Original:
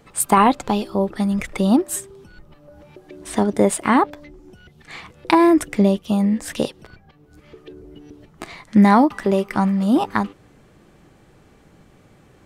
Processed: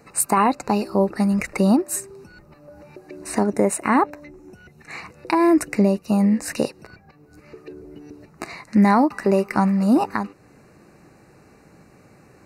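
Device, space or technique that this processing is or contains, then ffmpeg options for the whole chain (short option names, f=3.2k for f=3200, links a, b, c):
PA system with an anti-feedback notch: -filter_complex "[0:a]highpass=f=110:p=1,asuperstop=centerf=3300:order=8:qfactor=3.3,alimiter=limit=-9.5dB:level=0:latency=1:release=394,asettb=1/sr,asplit=3[a][b][c];[a]atrim=end=3.454[d];[b]atrim=start=3.45:end=4.98,asetpts=PTS-STARTPTS,afade=t=in:d=0.004:c=qsin,afade=t=out:st=1.526:d=0.004:c=qsin,bandreject=f=4.7k:w=5.3[e];[c]atrim=start=4.976[f];[d][e]acrossfade=d=0.004:c1=hsin:c2=qsin[g];[g][f]acrossfade=d=0.004:c1=qsin:c2=hsin,volume=2dB"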